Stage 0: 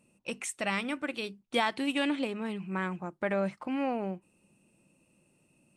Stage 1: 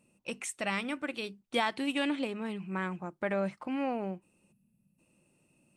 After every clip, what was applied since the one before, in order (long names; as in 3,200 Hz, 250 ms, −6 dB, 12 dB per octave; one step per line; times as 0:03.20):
gain on a spectral selection 0:04.52–0:04.99, 250–10,000 Hz −17 dB
level −1.5 dB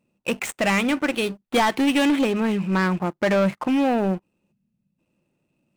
running median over 9 samples
leveller curve on the samples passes 3
level +4.5 dB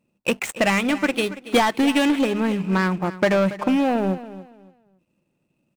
transient designer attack +4 dB, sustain −4 dB
repeating echo 281 ms, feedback 26%, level −15.5 dB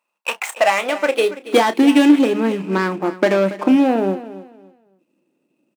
high-pass filter sweep 1,000 Hz → 300 Hz, 0:00.22–0:01.72
double-tracking delay 31 ms −11.5 dB
level +1 dB